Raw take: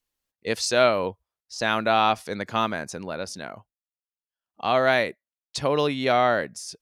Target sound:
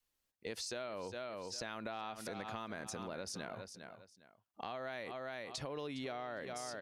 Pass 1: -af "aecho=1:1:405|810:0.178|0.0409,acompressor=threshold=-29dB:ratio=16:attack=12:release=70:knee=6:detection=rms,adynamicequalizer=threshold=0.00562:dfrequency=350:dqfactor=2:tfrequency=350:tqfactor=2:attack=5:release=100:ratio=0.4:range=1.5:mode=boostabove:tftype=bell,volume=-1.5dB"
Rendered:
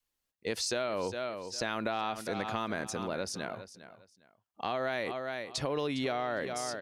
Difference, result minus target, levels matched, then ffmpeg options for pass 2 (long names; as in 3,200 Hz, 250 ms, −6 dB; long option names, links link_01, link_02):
downward compressor: peak gain reduction −10 dB
-af "aecho=1:1:405|810:0.178|0.0409,acompressor=threshold=-39.5dB:ratio=16:attack=12:release=70:knee=6:detection=rms,adynamicequalizer=threshold=0.00562:dfrequency=350:dqfactor=2:tfrequency=350:tqfactor=2:attack=5:release=100:ratio=0.4:range=1.5:mode=boostabove:tftype=bell,volume=-1.5dB"